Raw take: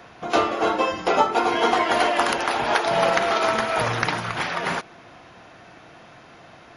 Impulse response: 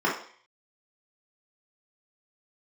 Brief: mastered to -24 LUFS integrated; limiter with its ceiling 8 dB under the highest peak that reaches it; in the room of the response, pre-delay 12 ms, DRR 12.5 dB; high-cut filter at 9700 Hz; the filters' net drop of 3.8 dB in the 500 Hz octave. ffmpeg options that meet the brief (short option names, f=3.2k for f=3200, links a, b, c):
-filter_complex "[0:a]lowpass=9.7k,equalizer=f=500:t=o:g=-5.5,alimiter=limit=-14dB:level=0:latency=1,asplit=2[a][b];[1:a]atrim=start_sample=2205,adelay=12[c];[b][c]afir=irnorm=-1:irlink=0,volume=-27.5dB[d];[a][d]amix=inputs=2:normalize=0,volume=0.5dB"